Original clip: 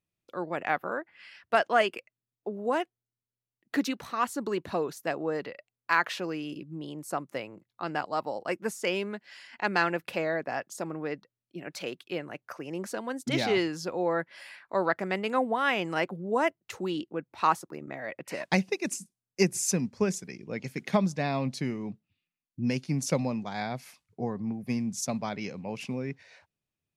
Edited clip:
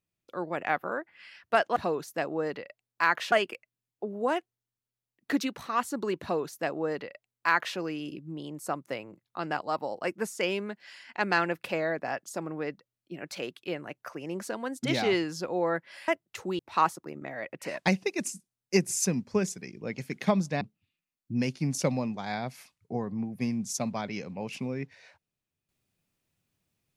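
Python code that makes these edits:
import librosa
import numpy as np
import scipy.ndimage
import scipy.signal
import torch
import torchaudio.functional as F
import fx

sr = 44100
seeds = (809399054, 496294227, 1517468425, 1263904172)

y = fx.edit(x, sr, fx.duplicate(start_s=4.65, length_s=1.56, to_s=1.76),
    fx.cut(start_s=14.52, length_s=1.91),
    fx.cut(start_s=16.94, length_s=0.31),
    fx.cut(start_s=21.27, length_s=0.62), tone=tone)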